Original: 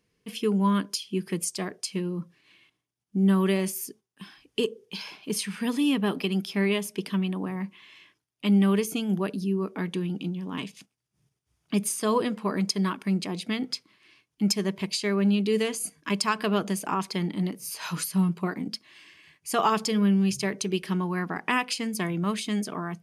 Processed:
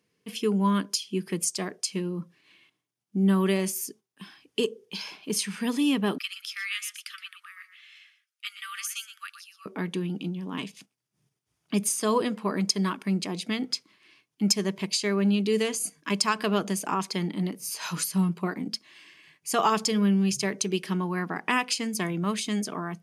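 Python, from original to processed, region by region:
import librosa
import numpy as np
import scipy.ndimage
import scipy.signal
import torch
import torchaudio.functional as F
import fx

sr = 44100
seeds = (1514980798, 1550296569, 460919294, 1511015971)

y = fx.chain(x, sr, fx.cheby1_highpass(hz=1200.0, order=8),
    fx.echo_single(ms=120, db=-11.0), at=(6.18, 9.66))
y = scipy.signal.sosfilt(scipy.signal.butter(2, 130.0, 'highpass', fs=sr, output='sos'), y)
y = fx.dynamic_eq(y, sr, hz=6600.0, q=1.5, threshold_db=-48.0, ratio=4.0, max_db=5)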